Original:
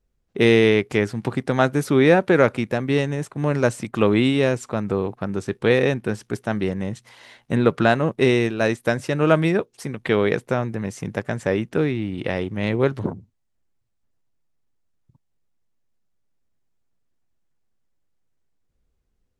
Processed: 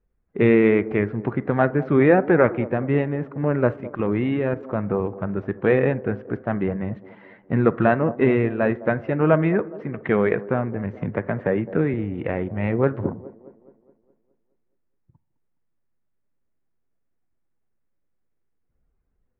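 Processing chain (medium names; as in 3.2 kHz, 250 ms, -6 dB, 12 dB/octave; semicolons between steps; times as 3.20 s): coarse spectral quantiser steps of 15 dB; low-pass 2.1 kHz 24 dB/octave; 3.76–4.63 s: level held to a coarse grid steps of 11 dB; feedback echo behind a band-pass 209 ms, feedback 50%, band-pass 440 Hz, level -15.5 dB; on a send at -19 dB: reverberation RT60 0.40 s, pre-delay 32 ms; 11.01–11.94 s: on the sum: three bands compressed up and down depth 40%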